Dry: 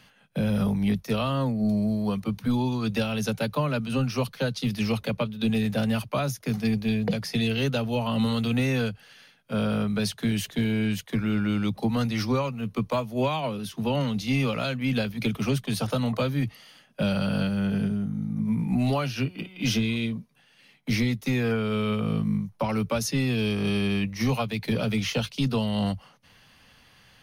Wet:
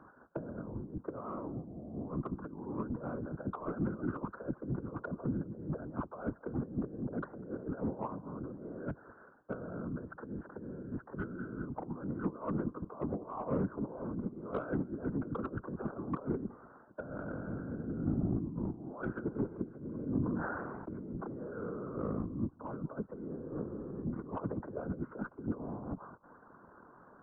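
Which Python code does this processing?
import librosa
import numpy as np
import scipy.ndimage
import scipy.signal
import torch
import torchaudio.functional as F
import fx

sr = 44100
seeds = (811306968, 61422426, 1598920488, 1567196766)

y = scipy.signal.sosfilt(scipy.signal.butter(4, 200.0, 'highpass', fs=sr, output='sos'), x)
y = fx.over_compress(y, sr, threshold_db=-34.0, ratio=-0.5)
y = scipy.signal.sosfilt(scipy.signal.cheby1(6, 6, 1500.0, 'lowpass', fs=sr, output='sos'), y)
y = y + 10.0 ** (-21.5 / 20.0) * np.pad(y, (int(198 * sr / 1000.0), 0))[:len(y)]
y = 10.0 ** (-26.5 / 20.0) * np.tanh(y / 10.0 ** (-26.5 / 20.0))
y = fx.whisperise(y, sr, seeds[0])
y = fx.sustainer(y, sr, db_per_s=24.0, at=(19.98, 22.16), fade=0.02)
y = F.gain(torch.from_numpy(y), 1.5).numpy()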